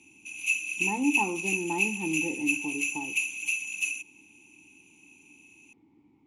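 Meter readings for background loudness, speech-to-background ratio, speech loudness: -28.5 LUFS, -4.5 dB, -33.0 LUFS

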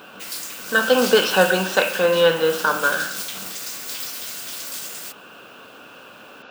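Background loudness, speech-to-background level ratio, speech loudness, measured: -29.5 LUFS, 11.0 dB, -18.5 LUFS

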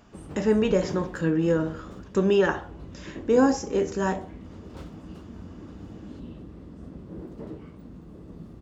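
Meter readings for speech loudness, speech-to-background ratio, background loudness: -24.5 LUFS, 17.5 dB, -42.0 LUFS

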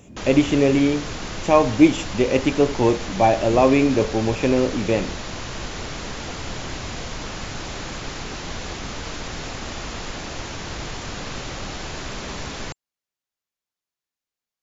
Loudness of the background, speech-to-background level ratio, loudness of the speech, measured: -31.5 LUFS, 12.5 dB, -19.0 LUFS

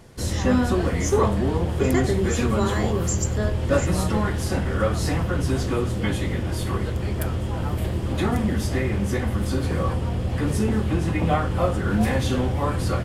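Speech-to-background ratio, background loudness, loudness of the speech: -3.0 dB, -24.0 LUFS, -27.0 LUFS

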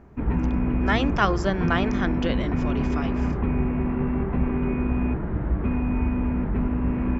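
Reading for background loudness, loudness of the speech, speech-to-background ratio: -25.5 LUFS, -27.0 LUFS, -1.5 dB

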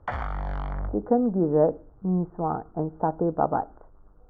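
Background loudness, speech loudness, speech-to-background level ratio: -34.0 LUFS, -26.0 LUFS, 8.0 dB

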